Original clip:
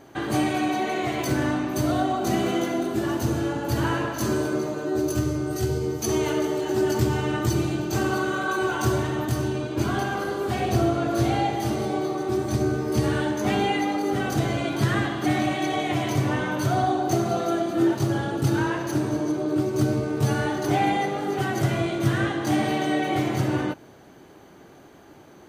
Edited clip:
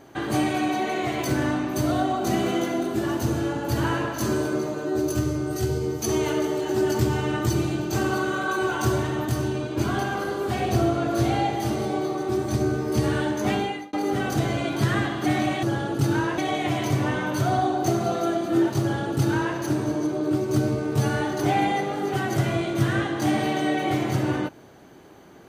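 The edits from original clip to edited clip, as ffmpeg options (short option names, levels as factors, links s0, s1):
-filter_complex "[0:a]asplit=4[s0][s1][s2][s3];[s0]atrim=end=13.93,asetpts=PTS-STARTPTS,afade=t=out:st=13.5:d=0.43[s4];[s1]atrim=start=13.93:end=15.632,asetpts=PTS-STARTPTS,afade=t=in:d=0.004:c=hsin[s5];[s2]atrim=start=18.058:end=18.812[s6];[s3]atrim=start=15.628[s7];[s4][s5]concat=n=2:v=0:a=1[s8];[s8][s6]acrossfade=d=0.004:c1=hsin:c2=hsin[s9];[s9][s7]acrossfade=d=0.004:c1=hsin:c2=hsin"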